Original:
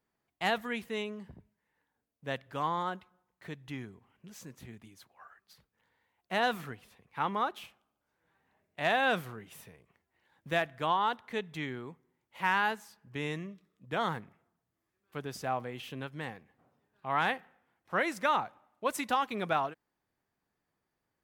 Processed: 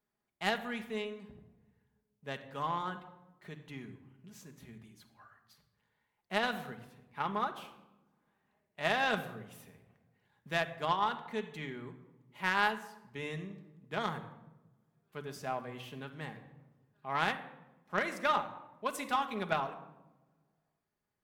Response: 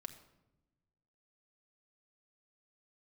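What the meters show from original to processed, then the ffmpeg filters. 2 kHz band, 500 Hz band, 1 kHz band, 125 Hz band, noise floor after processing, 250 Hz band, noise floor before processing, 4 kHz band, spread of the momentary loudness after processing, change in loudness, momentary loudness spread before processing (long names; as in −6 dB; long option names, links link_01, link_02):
−2.0 dB, −3.0 dB, −2.5 dB, −2.0 dB, −83 dBFS, −2.5 dB, −85 dBFS, −1.0 dB, 21 LU, −2.5 dB, 20 LU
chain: -filter_complex "[1:a]atrim=start_sample=2205,asetrate=39249,aresample=44100[link_01];[0:a][link_01]afir=irnorm=-1:irlink=0,acontrast=82,aeval=exprs='0.251*(cos(1*acos(clip(val(0)/0.251,-1,1)))-cos(1*PI/2))+0.0316*(cos(3*acos(clip(val(0)/0.251,-1,1)))-cos(3*PI/2))+0.00708*(cos(4*acos(clip(val(0)/0.251,-1,1)))-cos(4*PI/2))+0.00501*(cos(6*acos(clip(val(0)/0.251,-1,1)))-cos(6*PI/2))+0.00141*(cos(7*acos(clip(val(0)/0.251,-1,1)))-cos(7*PI/2))':channel_layout=same,volume=-3dB"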